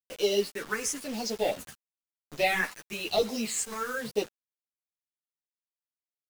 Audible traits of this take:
tremolo saw up 1.1 Hz, depth 55%
phaser sweep stages 4, 1 Hz, lowest notch 580–1,700 Hz
a quantiser's noise floor 8 bits, dither none
a shimmering, thickened sound

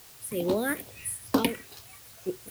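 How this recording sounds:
phaser sweep stages 4, 2.4 Hz, lowest notch 770–2,100 Hz
sample-and-hold tremolo, depth 75%
a quantiser's noise floor 10 bits, dither triangular

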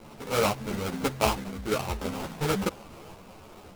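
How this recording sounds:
a quantiser's noise floor 8 bits, dither triangular
sample-and-hold tremolo
aliases and images of a low sample rate 1,800 Hz, jitter 20%
a shimmering, thickened sound

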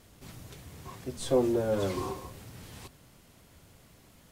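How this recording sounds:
background noise floor −59 dBFS
spectral slope −6.0 dB per octave

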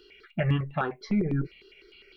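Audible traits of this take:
notches that jump at a steady rate 9.9 Hz 600–2,100 Hz

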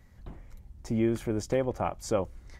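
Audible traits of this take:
background noise floor −55 dBFS
spectral slope −6.0 dB per octave

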